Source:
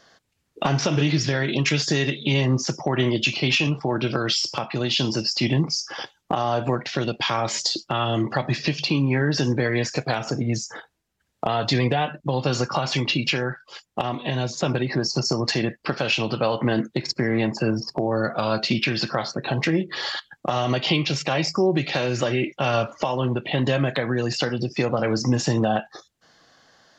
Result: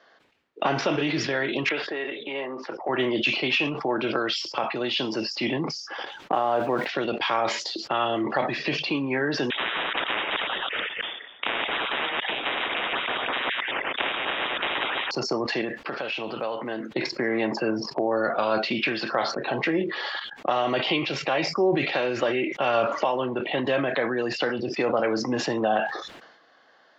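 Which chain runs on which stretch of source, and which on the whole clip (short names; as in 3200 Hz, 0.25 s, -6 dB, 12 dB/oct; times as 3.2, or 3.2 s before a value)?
1.69–2.89 HPF 440 Hz + air absorption 450 m
6.33–6.89 LPF 2300 Hz 6 dB/oct + requantised 8-bit, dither triangular
9.5–15.11 reverse delay 0.108 s, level -4.5 dB + inverted band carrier 3500 Hz + spectral compressor 10:1
15.61–16.91 block floating point 7-bit + compressor 2:1, threshold -29 dBFS
whole clip: three-band isolator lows -20 dB, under 260 Hz, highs -23 dB, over 3700 Hz; sustainer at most 59 dB/s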